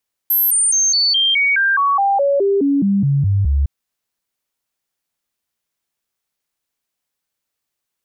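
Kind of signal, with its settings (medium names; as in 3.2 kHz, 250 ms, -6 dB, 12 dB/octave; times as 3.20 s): stepped sine 12.7 kHz down, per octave 2, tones 16, 0.21 s, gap 0.00 s -12 dBFS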